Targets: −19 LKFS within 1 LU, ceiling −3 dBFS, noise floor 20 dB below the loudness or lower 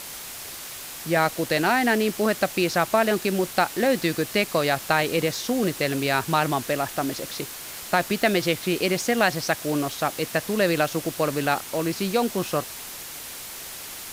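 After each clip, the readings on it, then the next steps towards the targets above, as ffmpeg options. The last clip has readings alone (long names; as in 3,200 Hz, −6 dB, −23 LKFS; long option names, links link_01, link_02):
background noise floor −38 dBFS; target noise floor −44 dBFS; integrated loudness −24.0 LKFS; sample peak −7.0 dBFS; target loudness −19.0 LKFS
→ -af "afftdn=noise_reduction=6:noise_floor=-38"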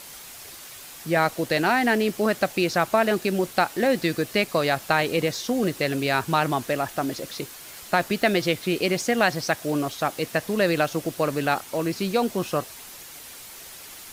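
background noise floor −42 dBFS; target noise floor −44 dBFS
→ -af "afftdn=noise_reduction=6:noise_floor=-42"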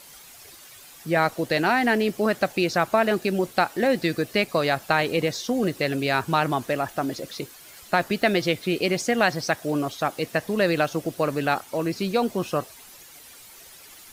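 background noise floor −47 dBFS; integrated loudness −24.0 LKFS; sample peak −7.0 dBFS; target loudness −19.0 LKFS
→ -af "volume=5dB,alimiter=limit=-3dB:level=0:latency=1"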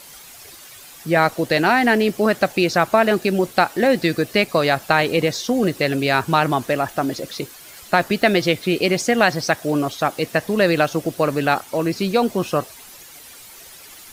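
integrated loudness −19.0 LKFS; sample peak −3.0 dBFS; background noise floor −42 dBFS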